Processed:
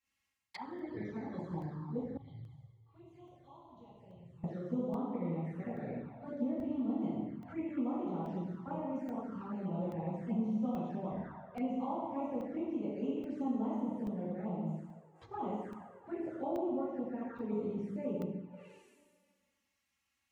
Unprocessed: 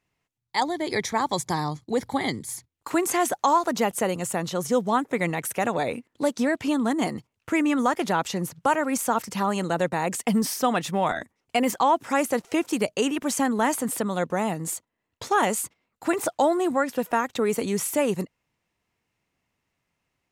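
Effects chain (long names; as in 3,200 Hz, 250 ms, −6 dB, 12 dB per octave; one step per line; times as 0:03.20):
high-pass filter 48 Hz 12 dB per octave
guitar amp tone stack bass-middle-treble 5-5-5
dense smooth reverb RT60 1.6 s, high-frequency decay 0.85×, DRR −9.5 dB
treble cut that deepens with the level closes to 550 Hz, closed at −36.5 dBFS
flanger swept by the level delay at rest 3.7 ms, full sweep at −33 dBFS
0:02.17–0:04.44: drawn EQ curve 140 Hz 0 dB, 200 Hz −22 dB, 1,100 Hz −17 dB, 1,600 Hz −25 dB, 3,300 Hz −3 dB, 5,500 Hz −11 dB
regular buffer underruns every 0.83 s, samples 64, zero, from 0:00.79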